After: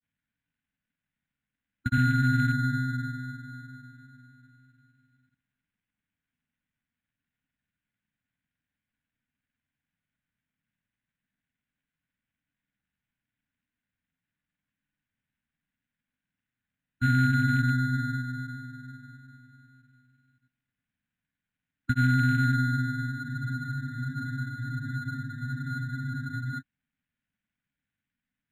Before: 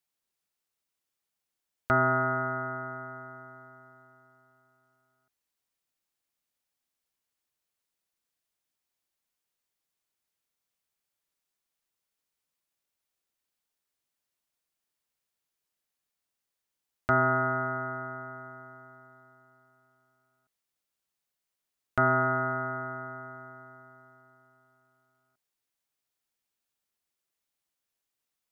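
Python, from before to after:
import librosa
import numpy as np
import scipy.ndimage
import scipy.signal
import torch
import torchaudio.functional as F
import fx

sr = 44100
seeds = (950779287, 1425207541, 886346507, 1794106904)

p1 = scipy.signal.sosfilt(scipy.signal.butter(2, 100.0, 'highpass', fs=sr, output='sos'), x)
p2 = fx.low_shelf(p1, sr, hz=210.0, db=8.5)
p3 = fx.over_compress(p2, sr, threshold_db=-29.0, ratio=-1.0)
p4 = p2 + (p3 * librosa.db_to_amplitude(2.5))
p5 = fx.clip_asym(p4, sr, top_db=-14.0, bottom_db=-13.5)
p6 = fx.quant_dither(p5, sr, seeds[0], bits=12, dither='none')
p7 = fx.granulator(p6, sr, seeds[1], grain_ms=100.0, per_s=20.0, spray_ms=100.0, spread_st=0)
p8 = fx.brickwall_bandstop(p7, sr, low_hz=300.0, high_hz=1400.0)
p9 = fx.air_absorb(p8, sr, metres=410.0)
p10 = p9 + fx.echo_single(p9, sr, ms=350, db=-23.5, dry=0)
p11 = fx.spec_freeze(p10, sr, seeds[2], at_s=23.2, hold_s=3.4)
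p12 = np.interp(np.arange(len(p11)), np.arange(len(p11))[::8], p11[::8])
y = p12 * librosa.db_to_amplitude(3.0)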